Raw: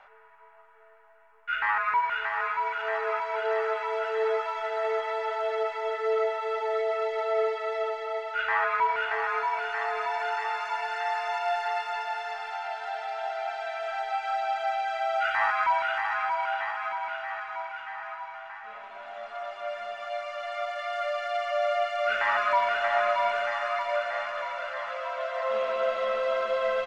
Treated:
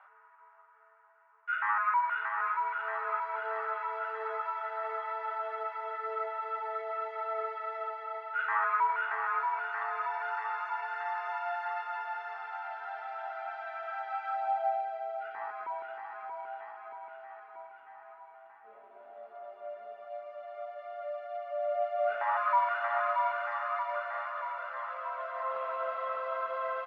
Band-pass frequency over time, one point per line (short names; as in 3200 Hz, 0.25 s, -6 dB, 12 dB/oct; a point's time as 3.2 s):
band-pass, Q 2.3
14.27 s 1200 Hz
15.11 s 400 Hz
21.57 s 400 Hz
22.53 s 1100 Hz